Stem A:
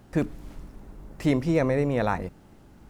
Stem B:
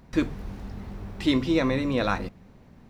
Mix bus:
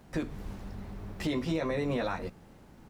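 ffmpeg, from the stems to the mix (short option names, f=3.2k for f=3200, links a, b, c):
-filter_complex "[0:a]bass=f=250:g=-9,treble=f=4k:g=0,volume=-2dB[a];[1:a]adelay=9.5,volume=-4.5dB[b];[a][b]amix=inputs=2:normalize=0,alimiter=limit=-22dB:level=0:latency=1:release=185"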